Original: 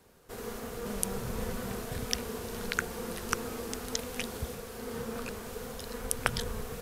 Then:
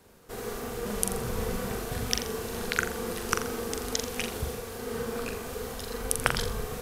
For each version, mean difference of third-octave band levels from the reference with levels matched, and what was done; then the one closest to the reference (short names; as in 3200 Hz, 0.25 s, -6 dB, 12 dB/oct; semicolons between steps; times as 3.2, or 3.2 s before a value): 1.5 dB: flutter echo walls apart 7.3 m, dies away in 0.41 s; gain +3 dB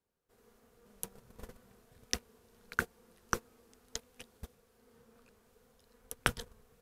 16.0 dB: gate -30 dBFS, range -28 dB; gain +2 dB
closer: first